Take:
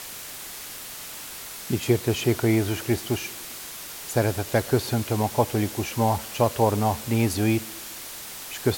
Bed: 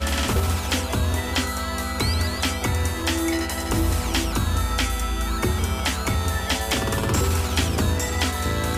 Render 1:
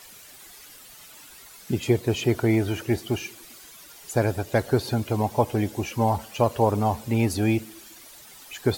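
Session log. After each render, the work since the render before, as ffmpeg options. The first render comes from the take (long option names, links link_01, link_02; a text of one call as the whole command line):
ffmpeg -i in.wav -af "afftdn=noise_reduction=12:noise_floor=-38" out.wav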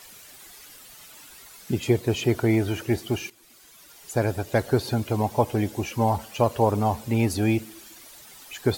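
ffmpeg -i in.wav -filter_complex "[0:a]asplit=2[link_01][link_02];[link_01]atrim=end=3.3,asetpts=PTS-STARTPTS,afade=type=out:start_time=3.296:duration=0.004:curve=hsin:silence=0.223872[link_03];[link_02]atrim=start=3.3,asetpts=PTS-STARTPTS,afade=type=in:duration=1.44:curve=qsin:silence=0.223872[link_04];[link_03][link_04]concat=n=2:v=0:a=1" out.wav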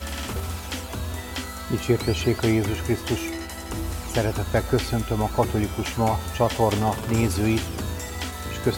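ffmpeg -i in.wav -i bed.wav -filter_complex "[1:a]volume=-8dB[link_01];[0:a][link_01]amix=inputs=2:normalize=0" out.wav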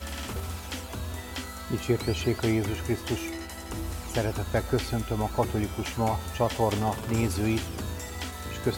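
ffmpeg -i in.wav -af "volume=-4.5dB" out.wav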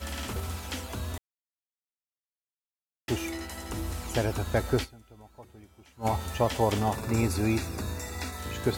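ffmpeg -i in.wav -filter_complex "[0:a]asettb=1/sr,asplit=3[link_01][link_02][link_03];[link_01]atrim=end=6.954[link_04];[link_02]atrim=start=6.95:end=8.39,asetpts=PTS-STARTPTS,afade=type=in:duration=0.004:curve=qsin,afade=type=out:start_time=1.436:duration=0.004:curve=qsin,asuperstop=centerf=3100:order=12:qfactor=5.4[link_05];[link_03]atrim=start=8.386[link_06];[link_04][link_05]acrossfade=duration=0.004:curve1=hsin:curve2=qsin[link_07];[link_07][link_06]acrossfade=duration=0.004:curve1=qsin:curve2=hsin,asplit=5[link_08][link_09][link_10][link_11][link_12];[link_08]atrim=end=1.18,asetpts=PTS-STARTPTS,afade=type=out:start_time=1.176:duration=0.004:curve=hsin[link_13];[link_09]atrim=start=1.18:end=3.08,asetpts=PTS-STARTPTS,volume=0[link_14];[link_10]atrim=start=3.08:end=5.05,asetpts=PTS-STARTPTS,afade=type=in:duration=0.004:curve=hsin,afade=type=out:start_time=1.75:duration=0.22:curve=exp:silence=0.0668344[link_15];[link_11]atrim=start=5.05:end=5.84,asetpts=PTS-STARTPTS,volume=-23.5dB[link_16];[link_12]atrim=start=5.84,asetpts=PTS-STARTPTS,afade=type=in:duration=0.22:curve=exp:silence=0.0668344[link_17];[link_13][link_14][link_15][link_16][link_17]concat=n=5:v=0:a=1" out.wav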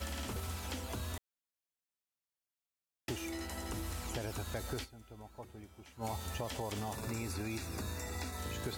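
ffmpeg -i in.wav -filter_complex "[0:a]alimiter=limit=-19dB:level=0:latency=1:release=44,acrossover=split=1000|3300[link_01][link_02][link_03];[link_01]acompressor=threshold=-39dB:ratio=4[link_04];[link_02]acompressor=threshold=-50dB:ratio=4[link_05];[link_03]acompressor=threshold=-47dB:ratio=4[link_06];[link_04][link_05][link_06]amix=inputs=3:normalize=0" out.wav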